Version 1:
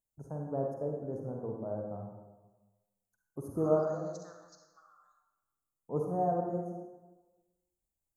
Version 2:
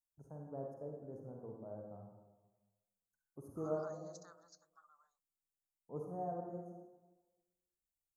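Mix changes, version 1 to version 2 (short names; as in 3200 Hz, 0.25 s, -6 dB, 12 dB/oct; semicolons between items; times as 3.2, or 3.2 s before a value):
first voice -11.0 dB; second voice: send off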